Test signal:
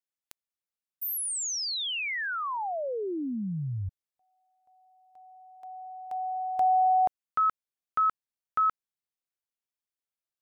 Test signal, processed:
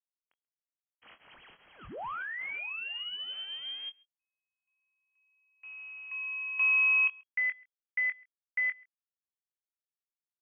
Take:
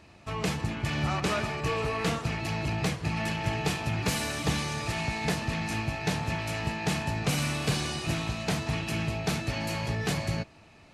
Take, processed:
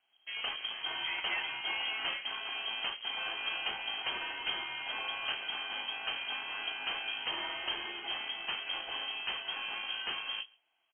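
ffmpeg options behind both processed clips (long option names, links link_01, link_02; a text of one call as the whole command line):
ffmpeg -i in.wav -filter_complex "[0:a]afwtdn=0.0112,equalizer=frequency=170:width_type=o:width=2:gain=-5.5,acrusher=bits=2:mode=log:mix=0:aa=0.000001,asplit=2[link_01][link_02];[link_02]adelay=23,volume=-10dB[link_03];[link_01][link_03]amix=inputs=2:normalize=0,asplit=2[link_04][link_05];[link_05]adelay=134.1,volume=-26dB,highshelf=frequency=4000:gain=-3.02[link_06];[link_04][link_06]amix=inputs=2:normalize=0,lowpass=frequency=2800:width_type=q:width=0.5098,lowpass=frequency=2800:width_type=q:width=0.6013,lowpass=frequency=2800:width_type=q:width=0.9,lowpass=frequency=2800:width_type=q:width=2.563,afreqshift=-3300,volume=-5dB" out.wav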